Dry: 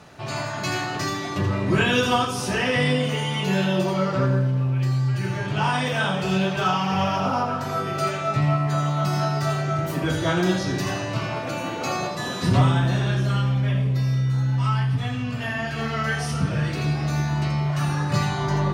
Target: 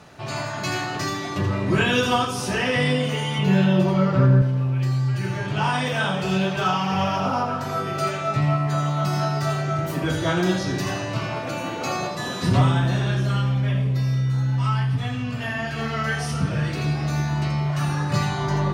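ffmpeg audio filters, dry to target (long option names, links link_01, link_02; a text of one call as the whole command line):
ffmpeg -i in.wav -filter_complex "[0:a]asettb=1/sr,asplit=3[link_01][link_02][link_03];[link_01]atrim=end=3.384[link_04];[link_02]atrim=start=3.38:end=4.42,asetpts=PTS-STARTPTS,afade=type=in:duration=0.004:curve=qsin,afade=type=out:start_time=1.036:duration=0.004:curve=qsin,bass=frequency=250:gain=7,treble=frequency=4000:gain=-7[link_05];[link_03]atrim=start=4.416[link_06];[link_04][link_05]acrossfade=duration=0.004:curve1=hsin:curve2=qsin[link_07];[link_07][link_06]acrossfade=duration=0.004:curve1=qsin:curve2=hsin" out.wav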